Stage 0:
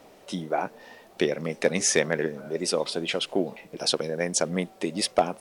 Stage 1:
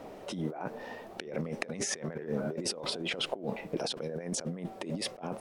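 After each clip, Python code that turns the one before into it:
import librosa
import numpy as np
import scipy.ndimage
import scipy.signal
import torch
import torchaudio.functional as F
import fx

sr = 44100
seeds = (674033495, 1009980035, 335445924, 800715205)

y = fx.high_shelf(x, sr, hz=2100.0, db=-11.5)
y = fx.over_compress(y, sr, threshold_db=-37.0, ratio=-1.0)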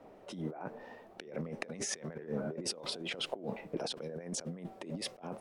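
y = fx.band_widen(x, sr, depth_pct=40)
y = y * librosa.db_to_amplitude(-4.5)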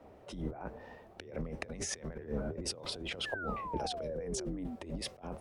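y = fx.octave_divider(x, sr, octaves=2, level_db=-1.0)
y = fx.spec_paint(y, sr, seeds[0], shape='fall', start_s=3.25, length_s=1.51, low_hz=230.0, high_hz=1800.0, level_db=-40.0)
y = y * librosa.db_to_amplitude(-1.0)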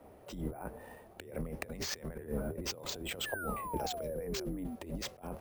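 y = np.repeat(x[::4], 4)[:len(x)]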